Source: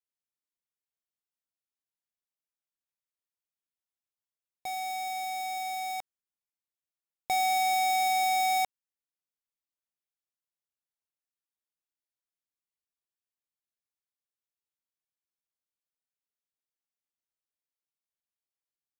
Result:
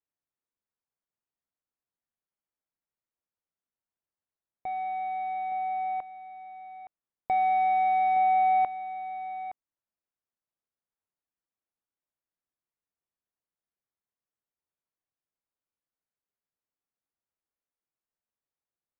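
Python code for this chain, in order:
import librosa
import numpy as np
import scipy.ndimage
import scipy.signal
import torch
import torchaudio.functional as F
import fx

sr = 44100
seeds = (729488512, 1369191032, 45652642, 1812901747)

p1 = scipy.ndimage.gaussian_filter1d(x, 4.4, mode='constant')
p2 = p1 + fx.echo_single(p1, sr, ms=867, db=-12.0, dry=0)
y = p2 * librosa.db_to_amplitude(4.0)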